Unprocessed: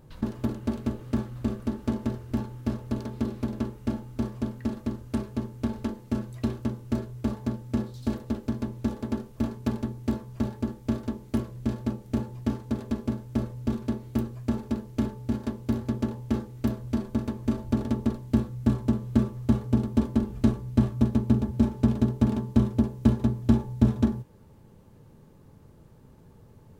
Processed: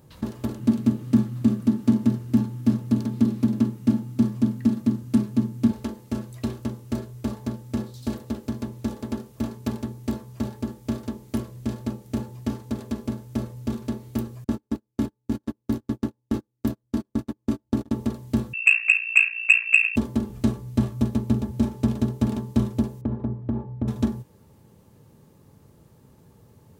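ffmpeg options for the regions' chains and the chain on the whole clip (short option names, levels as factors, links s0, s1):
-filter_complex "[0:a]asettb=1/sr,asplit=3[s0][s1][s2];[s0]atrim=end=0.594[s3];[s1]atrim=start=0.59:end=5.71,asetpts=PTS-STARTPTS,afade=t=in:d=0.004:c=qsin,afade=t=out:st=5.116:d=0.004:c=qsin,highpass=f=110:w=0.5412,highpass=f=110:w=1.3066,lowshelf=f=340:t=q:w=1.5:g=8[s4];[s2]atrim=start=5.706[s5];[s3][s4]acrossfade=d=0.004:c1=hsin:c2=qsin[s6];[s6][s5]acrossfade=d=0.004:c1=qsin:c2=hsin,asettb=1/sr,asplit=3[s7][s8][s9];[s7]atrim=end=14.444[s10];[s8]atrim=start=14.44:end=17.96,asetpts=PTS-STARTPTS,afade=t=in:d=0.004:c=qsin,afade=t=out:st=3.516:d=0.004:c=qsin,agate=range=0.0141:threshold=0.0355:ratio=16:release=100:detection=peak,equalizer=f=300:w=5.3:g=9.5[s11];[s9]atrim=start=17.956[s12];[s10][s11]acrossfade=d=0.004:c1=hsin:c2=qsin[s13];[s13][s12]acrossfade=d=0.004:c1=qsin:c2=hsin,asettb=1/sr,asplit=3[s14][s15][s16];[s14]atrim=end=18.534[s17];[s15]atrim=start=18.53:end=19.96,asetpts=PTS-STARTPTS,afade=t=in:d=0.004:c=qsin,afade=t=out:st=1.426:d=0.004:c=qsin,lowpass=f=2400:t=q:w=0.5098,lowpass=f=2400:t=q:w=0.6013,lowpass=f=2400:t=q:w=0.9,lowpass=f=2400:t=q:w=2.563,afreqshift=-2800,acontrast=59,aeval=exprs='val(0)*sin(2*PI*29*n/s)':c=same[s18];[s16]atrim=start=19.956[s19];[s17][s18]acrossfade=d=0.004:c1=hsin:c2=qsin[s20];[s20][s19]acrossfade=d=0.004:c1=qsin:c2=hsin,asettb=1/sr,asplit=3[s21][s22][s23];[s21]atrim=end=23.014[s24];[s22]atrim=start=23.01:end=23.88,asetpts=PTS-STARTPTS,afade=t=in:d=0.004:c=qsin,afade=t=out:st=0.866:d=0.004:c=qsin,lowpass=1200,acompressor=threshold=0.1:ratio=5:attack=3.2:release=140:knee=1:detection=peak[s25];[s23]atrim=start=23.876[s26];[s24][s25]acrossfade=d=0.004:c1=hsin:c2=qsin[s27];[s27][s26]acrossfade=d=0.004:c1=qsin:c2=hsin,highpass=61,highshelf=f=4300:g=7.5,bandreject=f=1500:w=24"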